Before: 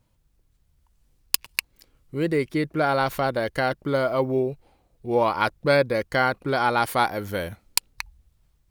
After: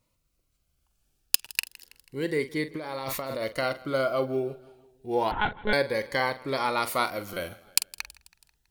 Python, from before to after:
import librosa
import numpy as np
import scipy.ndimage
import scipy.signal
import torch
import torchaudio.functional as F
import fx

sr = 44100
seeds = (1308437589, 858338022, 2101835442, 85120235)

y = fx.doubler(x, sr, ms=45.0, db=-12)
y = fx.over_compress(y, sr, threshold_db=-28.0, ratio=-1.0, at=(2.75, 3.43))
y = fx.low_shelf(y, sr, hz=290.0, db=-11.0)
y = fx.echo_feedback(y, sr, ms=163, feedback_pct=55, wet_db=-22)
y = fx.lpc_monotone(y, sr, seeds[0], pitch_hz=210.0, order=10, at=(5.31, 5.73))
y = fx.buffer_glitch(y, sr, at_s=(1.36, 7.33, 8.29), block=256, repeats=5)
y = fx.notch_cascade(y, sr, direction='rising', hz=0.29)